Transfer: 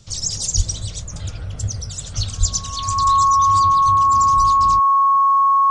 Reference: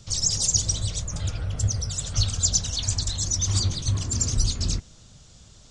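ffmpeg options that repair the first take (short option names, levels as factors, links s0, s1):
-filter_complex "[0:a]bandreject=f=1100:w=30,asplit=3[s0][s1][s2];[s0]afade=t=out:st=0.56:d=0.02[s3];[s1]highpass=f=140:w=0.5412,highpass=f=140:w=1.3066,afade=t=in:st=0.56:d=0.02,afade=t=out:st=0.68:d=0.02[s4];[s2]afade=t=in:st=0.68:d=0.02[s5];[s3][s4][s5]amix=inputs=3:normalize=0,asplit=3[s6][s7][s8];[s6]afade=t=out:st=2.39:d=0.02[s9];[s7]highpass=f=140:w=0.5412,highpass=f=140:w=1.3066,afade=t=in:st=2.39:d=0.02,afade=t=out:st=2.51:d=0.02[s10];[s8]afade=t=in:st=2.51:d=0.02[s11];[s9][s10][s11]amix=inputs=3:normalize=0,asetnsamples=n=441:p=0,asendcmd='3.23 volume volume 4dB',volume=1"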